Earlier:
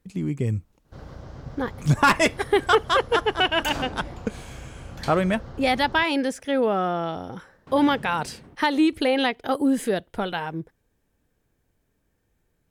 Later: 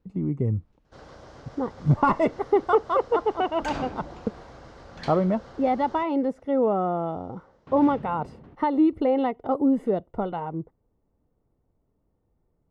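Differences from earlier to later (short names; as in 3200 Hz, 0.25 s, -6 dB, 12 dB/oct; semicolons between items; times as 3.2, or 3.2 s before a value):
speech: add polynomial smoothing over 65 samples; first sound: add tone controls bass -12 dB, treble +2 dB; second sound: add air absorption 120 m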